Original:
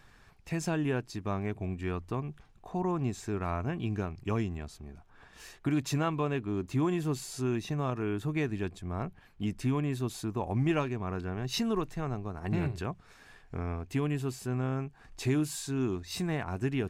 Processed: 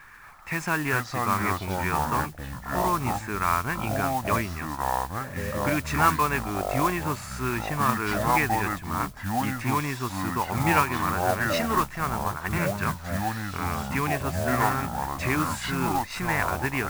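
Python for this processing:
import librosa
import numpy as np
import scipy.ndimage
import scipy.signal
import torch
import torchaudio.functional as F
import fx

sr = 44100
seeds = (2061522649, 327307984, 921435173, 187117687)

y = fx.band_shelf(x, sr, hz=1500.0, db=14.5, octaves=1.7)
y = fx.echo_pitch(y, sr, ms=237, semitones=-5, count=2, db_per_echo=-3.0)
y = fx.mod_noise(y, sr, seeds[0], snr_db=14)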